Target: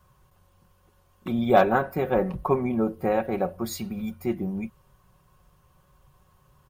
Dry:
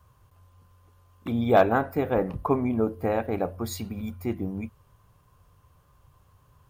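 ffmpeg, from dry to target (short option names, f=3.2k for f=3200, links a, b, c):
-af "aecho=1:1:5.4:0.62"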